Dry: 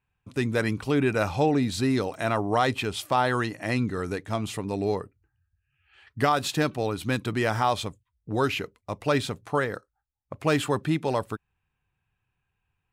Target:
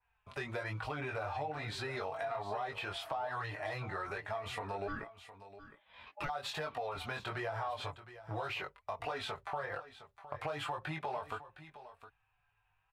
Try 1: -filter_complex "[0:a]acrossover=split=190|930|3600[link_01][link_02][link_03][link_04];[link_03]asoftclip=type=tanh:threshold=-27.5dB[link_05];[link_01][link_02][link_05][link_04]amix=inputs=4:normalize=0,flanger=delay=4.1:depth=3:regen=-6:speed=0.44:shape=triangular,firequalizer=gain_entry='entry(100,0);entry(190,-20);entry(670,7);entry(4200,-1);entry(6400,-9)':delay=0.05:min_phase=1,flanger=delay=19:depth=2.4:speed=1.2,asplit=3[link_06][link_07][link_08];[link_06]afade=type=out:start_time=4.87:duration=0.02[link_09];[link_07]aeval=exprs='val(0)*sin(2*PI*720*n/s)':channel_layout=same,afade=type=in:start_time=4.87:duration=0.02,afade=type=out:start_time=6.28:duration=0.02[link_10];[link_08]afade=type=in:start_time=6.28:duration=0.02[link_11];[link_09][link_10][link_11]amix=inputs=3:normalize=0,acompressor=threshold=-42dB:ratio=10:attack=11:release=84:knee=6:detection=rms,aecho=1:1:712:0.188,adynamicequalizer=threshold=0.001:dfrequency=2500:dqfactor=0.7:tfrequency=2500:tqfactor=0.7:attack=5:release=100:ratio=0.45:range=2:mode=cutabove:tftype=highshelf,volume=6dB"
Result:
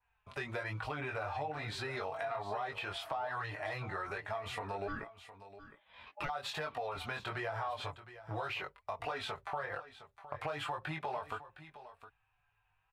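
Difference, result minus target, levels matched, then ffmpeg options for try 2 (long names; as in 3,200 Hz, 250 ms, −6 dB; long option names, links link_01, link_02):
soft clipping: distortion −5 dB
-filter_complex "[0:a]acrossover=split=190|930|3600[link_01][link_02][link_03][link_04];[link_03]asoftclip=type=tanh:threshold=-34dB[link_05];[link_01][link_02][link_05][link_04]amix=inputs=4:normalize=0,flanger=delay=4.1:depth=3:regen=-6:speed=0.44:shape=triangular,firequalizer=gain_entry='entry(100,0);entry(190,-20);entry(670,7);entry(4200,-1);entry(6400,-9)':delay=0.05:min_phase=1,flanger=delay=19:depth=2.4:speed=1.2,asplit=3[link_06][link_07][link_08];[link_06]afade=type=out:start_time=4.87:duration=0.02[link_09];[link_07]aeval=exprs='val(0)*sin(2*PI*720*n/s)':channel_layout=same,afade=type=in:start_time=4.87:duration=0.02,afade=type=out:start_time=6.28:duration=0.02[link_10];[link_08]afade=type=in:start_time=6.28:duration=0.02[link_11];[link_09][link_10][link_11]amix=inputs=3:normalize=0,acompressor=threshold=-42dB:ratio=10:attack=11:release=84:knee=6:detection=rms,aecho=1:1:712:0.188,adynamicequalizer=threshold=0.001:dfrequency=2500:dqfactor=0.7:tfrequency=2500:tqfactor=0.7:attack=5:release=100:ratio=0.45:range=2:mode=cutabove:tftype=highshelf,volume=6dB"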